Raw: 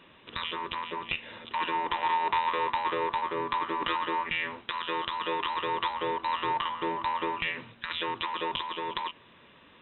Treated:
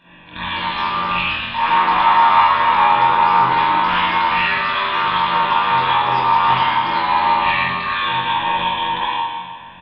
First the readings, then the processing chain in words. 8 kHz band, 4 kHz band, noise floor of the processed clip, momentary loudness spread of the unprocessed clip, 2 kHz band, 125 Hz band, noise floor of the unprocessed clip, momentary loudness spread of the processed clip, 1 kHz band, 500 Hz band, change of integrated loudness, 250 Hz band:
no reading, +12.5 dB, -37 dBFS, 7 LU, +15.0 dB, +18.0 dB, -57 dBFS, 7 LU, +16.0 dB, +6.0 dB, +15.0 dB, +9.0 dB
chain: comb 1.2 ms, depth 76%; ever faster or slower copies 263 ms, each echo +3 st, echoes 2, each echo -6 dB; on a send: flutter echo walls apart 3.9 m, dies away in 0.42 s; on the sum: spring tank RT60 1.5 s, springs 39/56 ms, chirp 80 ms, DRR -10 dB; loudspeaker Doppler distortion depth 0.1 ms; trim -1 dB

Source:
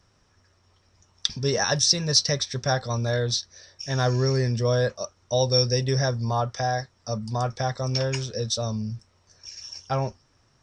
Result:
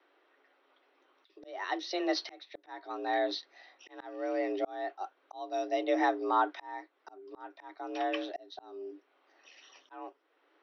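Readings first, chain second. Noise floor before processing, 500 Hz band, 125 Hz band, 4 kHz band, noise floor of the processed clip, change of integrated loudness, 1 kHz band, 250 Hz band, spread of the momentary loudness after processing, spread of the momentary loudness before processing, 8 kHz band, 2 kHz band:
-64 dBFS, -8.5 dB, under -40 dB, -17.0 dB, -72 dBFS, -9.5 dB, -3.5 dB, -6.0 dB, 19 LU, 13 LU, under -25 dB, -7.0 dB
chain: mistuned SSB +180 Hz 160–3500 Hz; slow attack 658 ms; trim -1 dB

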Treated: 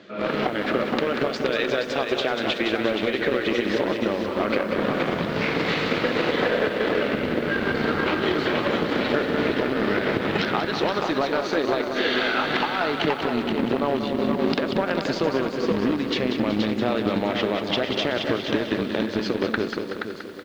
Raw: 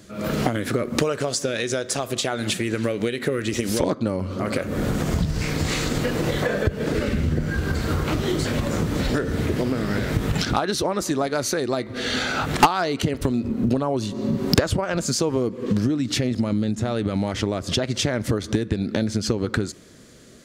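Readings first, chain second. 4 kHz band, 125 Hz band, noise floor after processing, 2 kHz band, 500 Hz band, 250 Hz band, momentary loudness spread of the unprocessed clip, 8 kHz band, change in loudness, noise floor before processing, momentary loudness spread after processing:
+0.5 dB, -9.0 dB, -31 dBFS, +4.0 dB, +2.0 dB, -1.0 dB, 3 LU, under -15 dB, 0.0 dB, -38 dBFS, 2 LU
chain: high-pass 300 Hz 12 dB/octave; compression 6:1, threshold -27 dBFS, peak gain reduction 16.5 dB; on a send: feedback delay 475 ms, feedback 31%, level -5.5 dB; on the sum: flange 0.15 Hz, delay 1.5 ms, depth 9 ms, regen -89%; in parallel at -9 dB: bit crusher 5-bit; on the sum: low-pass 3.7 kHz 24 dB/octave; loudness maximiser +17.5 dB; bit-crushed delay 188 ms, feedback 55%, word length 7-bit, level -7.5 dB; trim -8.5 dB

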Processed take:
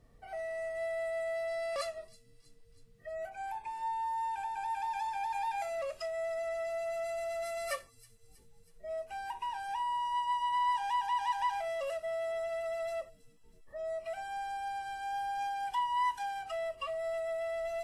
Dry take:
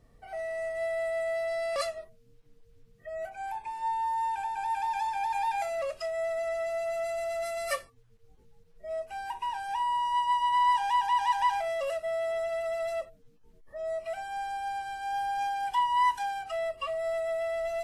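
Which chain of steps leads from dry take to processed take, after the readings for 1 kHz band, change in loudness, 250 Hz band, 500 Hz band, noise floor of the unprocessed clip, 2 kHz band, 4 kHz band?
-5.5 dB, -5.0 dB, no reading, -4.5 dB, -60 dBFS, -4.5 dB, -5.0 dB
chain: in parallel at 0 dB: compression, threshold -36 dBFS, peak gain reduction 14 dB; on the sum: feedback echo behind a high-pass 321 ms, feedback 56%, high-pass 5.2 kHz, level -14 dB; trim -8 dB

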